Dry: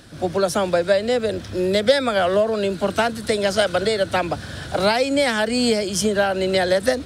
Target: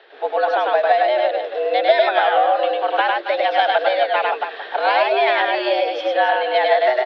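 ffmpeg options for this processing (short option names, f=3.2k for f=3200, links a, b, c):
-af "aecho=1:1:102|277:0.794|0.316,highpass=f=320:t=q:w=0.5412,highpass=f=320:t=q:w=1.307,lowpass=f=3.4k:t=q:w=0.5176,lowpass=f=3.4k:t=q:w=0.7071,lowpass=f=3.4k:t=q:w=1.932,afreqshift=120,volume=1dB"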